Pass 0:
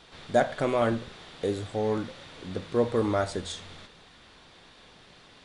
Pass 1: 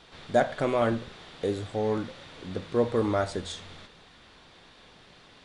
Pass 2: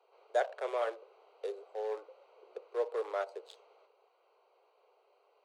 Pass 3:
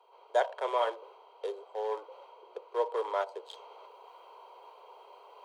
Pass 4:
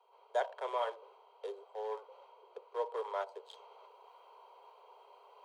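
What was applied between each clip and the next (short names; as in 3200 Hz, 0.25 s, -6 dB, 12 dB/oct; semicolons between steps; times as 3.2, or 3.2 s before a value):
high shelf 8300 Hz -5 dB
Wiener smoothing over 25 samples; steep high-pass 400 Hz 72 dB/oct; gain -7 dB
reverse; upward compressor, threshold -48 dBFS; reverse; small resonant body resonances 960/3200 Hz, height 15 dB, ringing for 35 ms; gain +2 dB
elliptic high-pass 390 Hz; gain -5.5 dB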